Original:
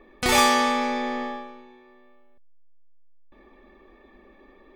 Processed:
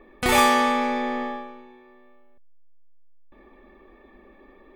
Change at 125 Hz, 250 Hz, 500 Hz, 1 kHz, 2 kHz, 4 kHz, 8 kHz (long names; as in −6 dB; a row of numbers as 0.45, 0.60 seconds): can't be measured, +1.5 dB, +1.5 dB, +1.5 dB, +0.5 dB, −2.5 dB, −3.0 dB